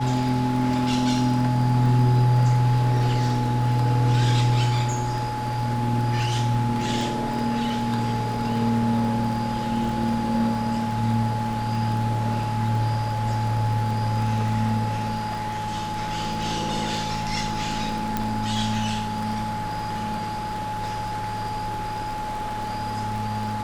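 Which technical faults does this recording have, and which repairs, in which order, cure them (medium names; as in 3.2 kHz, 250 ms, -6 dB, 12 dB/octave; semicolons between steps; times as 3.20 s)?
crackle 22 per s -30 dBFS
whine 850 Hz -28 dBFS
18.17 s: pop -10 dBFS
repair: de-click; band-stop 850 Hz, Q 30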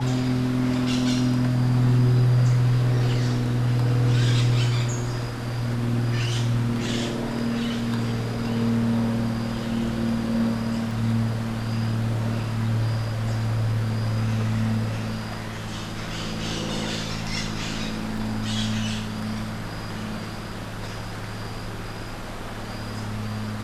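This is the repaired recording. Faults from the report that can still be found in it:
18.17 s: pop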